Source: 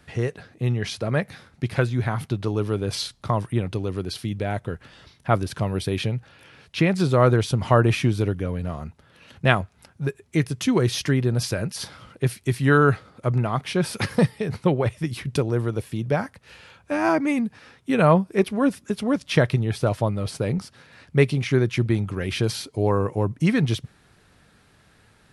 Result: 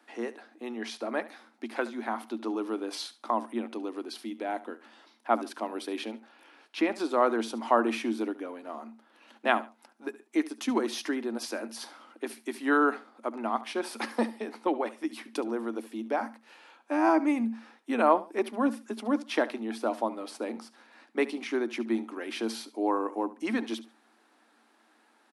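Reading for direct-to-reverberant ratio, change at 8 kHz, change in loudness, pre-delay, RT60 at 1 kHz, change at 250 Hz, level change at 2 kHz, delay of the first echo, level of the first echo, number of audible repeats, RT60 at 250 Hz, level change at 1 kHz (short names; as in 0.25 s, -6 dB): none, -9.0 dB, -7.5 dB, none, none, -6.0 dB, -6.5 dB, 71 ms, -17.0 dB, 2, none, -2.0 dB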